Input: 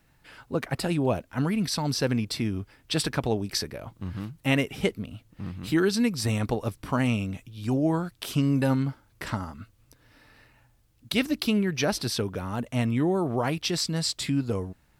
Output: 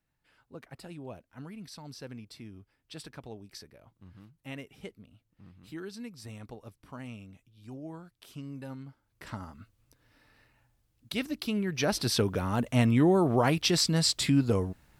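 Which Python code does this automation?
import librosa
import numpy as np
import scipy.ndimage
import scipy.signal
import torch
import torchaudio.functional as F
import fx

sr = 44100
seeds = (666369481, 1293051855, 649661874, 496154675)

y = fx.gain(x, sr, db=fx.line((8.86, -18.0), (9.44, -7.5), (11.47, -7.5), (12.21, 2.0)))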